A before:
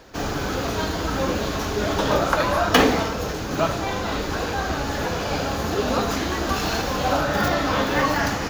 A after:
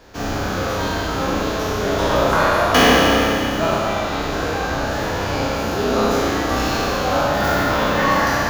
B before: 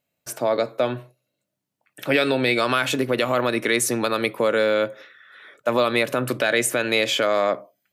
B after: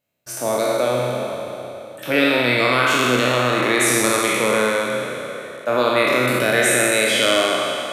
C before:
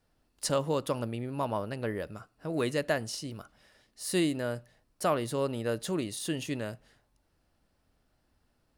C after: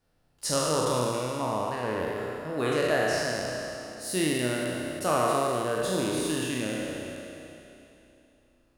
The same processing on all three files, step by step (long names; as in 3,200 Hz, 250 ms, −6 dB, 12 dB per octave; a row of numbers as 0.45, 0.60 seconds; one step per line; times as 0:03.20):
peak hold with a decay on every bin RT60 2.99 s
spring reverb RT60 1.3 s, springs 32 ms, chirp 55 ms, DRR 3 dB
level −2.5 dB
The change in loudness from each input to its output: +4.5, +4.0, +4.5 LU